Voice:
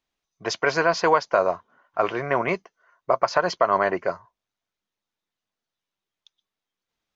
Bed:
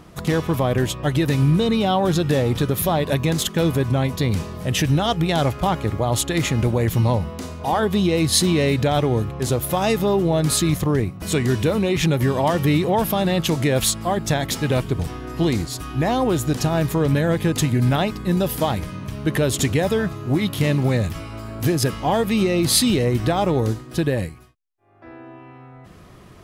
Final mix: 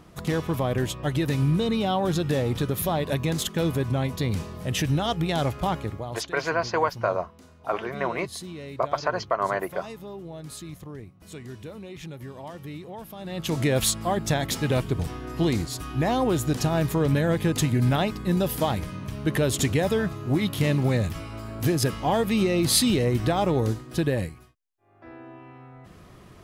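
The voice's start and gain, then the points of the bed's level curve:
5.70 s, -5.0 dB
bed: 5.76 s -5.5 dB
6.33 s -20 dB
13.16 s -20 dB
13.58 s -3.5 dB

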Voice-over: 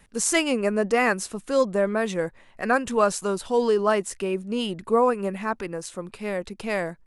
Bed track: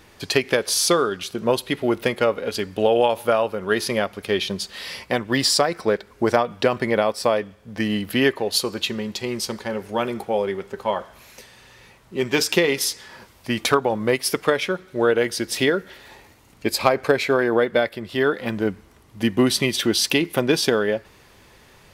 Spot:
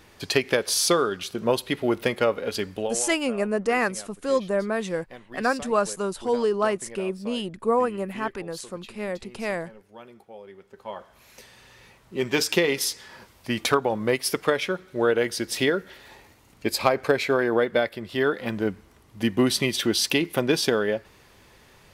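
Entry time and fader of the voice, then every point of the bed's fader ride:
2.75 s, -2.0 dB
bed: 2.71 s -2.5 dB
3.09 s -21.5 dB
10.41 s -21.5 dB
11.46 s -3 dB

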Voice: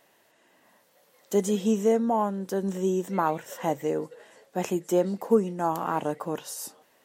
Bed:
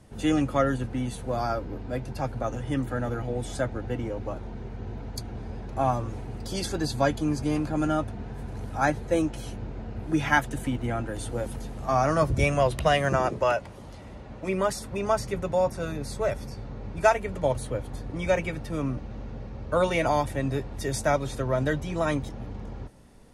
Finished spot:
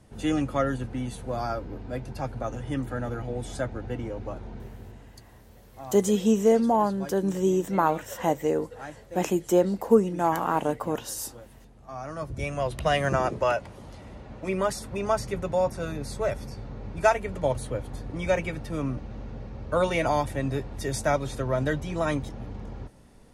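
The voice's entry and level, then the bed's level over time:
4.60 s, +2.5 dB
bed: 4.58 s -2 dB
5.28 s -16.5 dB
11.83 s -16.5 dB
13.01 s -0.5 dB

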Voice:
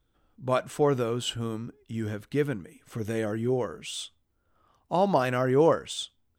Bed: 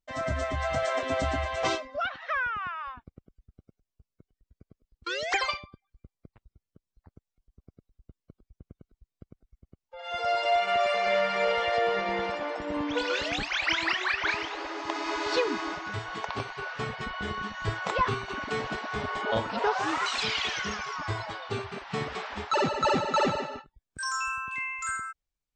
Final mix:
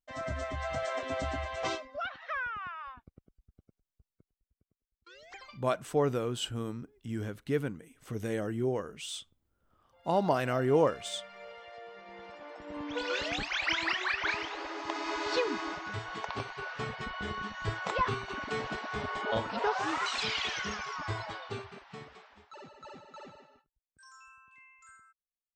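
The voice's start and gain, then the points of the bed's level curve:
5.15 s, -4.0 dB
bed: 4.11 s -6 dB
4.72 s -22 dB
11.95 s -22 dB
13.16 s -3.5 dB
21.38 s -3.5 dB
22.49 s -24 dB

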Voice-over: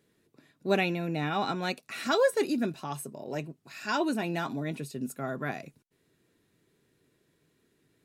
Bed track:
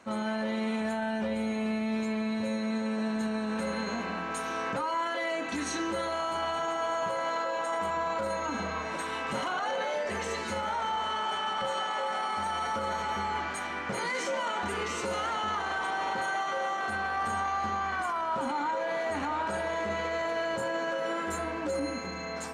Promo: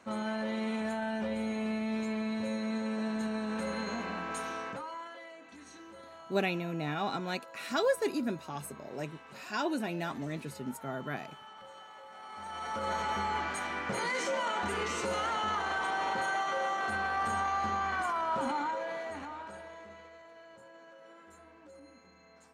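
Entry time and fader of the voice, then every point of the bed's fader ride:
5.65 s, -4.0 dB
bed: 4.43 s -3 dB
5.38 s -19 dB
12.1 s -19 dB
12.91 s -1 dB
18.5 s -1 dB
20.23 s -22.5 dB

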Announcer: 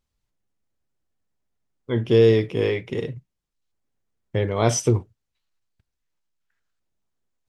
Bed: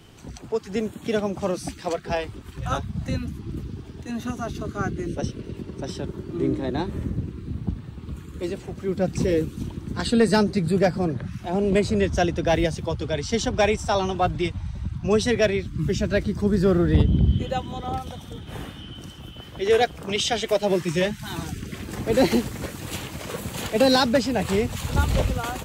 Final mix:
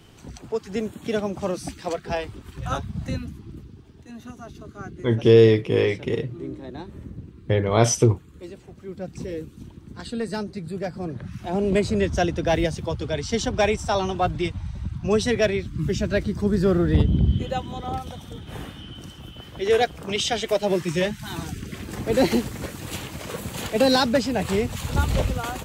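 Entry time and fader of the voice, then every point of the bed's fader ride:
3.15 s, +2.0 dB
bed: 3.1 s -1 dB
3.71 s -10 dB
10.83 s -10 dB
11.43 s -0.5 dB

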